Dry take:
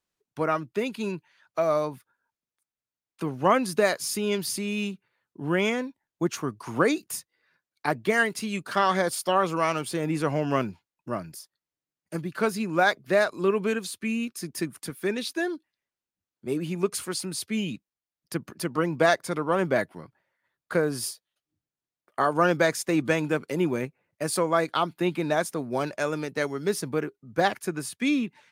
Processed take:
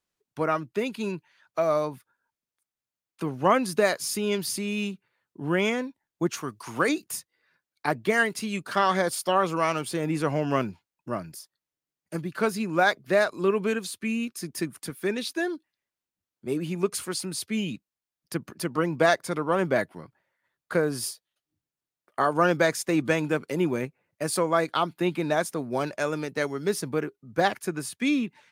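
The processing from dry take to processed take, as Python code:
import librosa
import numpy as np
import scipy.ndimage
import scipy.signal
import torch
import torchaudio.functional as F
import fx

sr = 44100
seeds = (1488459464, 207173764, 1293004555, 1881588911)

y = fx.tilt_shelf(x, sr, db=-5.0, hz=1300.0, at=(6.37, 6.89))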